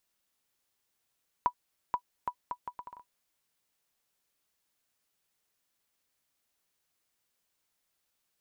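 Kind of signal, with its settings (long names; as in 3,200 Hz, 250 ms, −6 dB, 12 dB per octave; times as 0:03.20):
bouncing ball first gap 0.48 s, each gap 0.7, 981 Hz, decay 75 ms −15.5 dBFS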